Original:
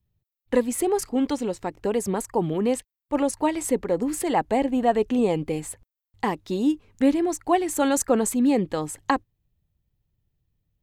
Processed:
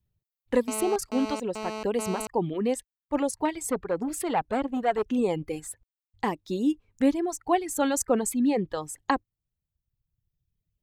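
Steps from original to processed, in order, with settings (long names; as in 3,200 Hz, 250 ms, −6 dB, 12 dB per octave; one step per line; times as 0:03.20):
reverb reduction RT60 1.4 s
0:00.68–0:02.27: phone interference −32 dBFS
0:03.45–0:05.04: saturating transformer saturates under 770 Hz
level −2.5 dB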